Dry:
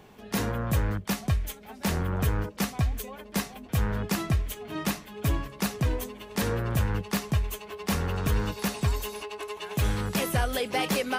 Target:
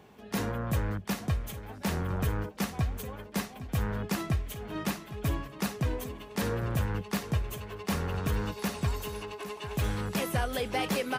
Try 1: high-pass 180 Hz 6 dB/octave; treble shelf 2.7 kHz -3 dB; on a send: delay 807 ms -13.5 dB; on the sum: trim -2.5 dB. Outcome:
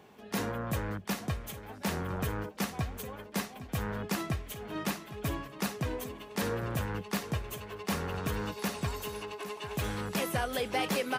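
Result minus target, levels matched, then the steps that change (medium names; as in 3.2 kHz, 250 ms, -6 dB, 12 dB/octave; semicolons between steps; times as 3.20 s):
125 Hz band -2.5 dB
change: high-pass 50 Hz 6 dB/octave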